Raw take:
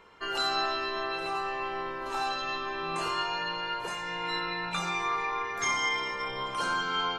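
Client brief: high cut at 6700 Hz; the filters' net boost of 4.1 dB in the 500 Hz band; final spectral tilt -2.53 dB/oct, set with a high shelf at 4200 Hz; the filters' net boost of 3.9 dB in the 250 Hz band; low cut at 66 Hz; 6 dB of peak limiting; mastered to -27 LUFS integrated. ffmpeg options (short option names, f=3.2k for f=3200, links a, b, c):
-af "highpass=66,lowpass=6.7k,equalizer=f=250:t=o:g=4,equalizer=f=500:t=o:g=4,highshelf=f=4.2k:g=5.5,volume=3dB,alimiter=limit=-18dB:level=0:latency=1"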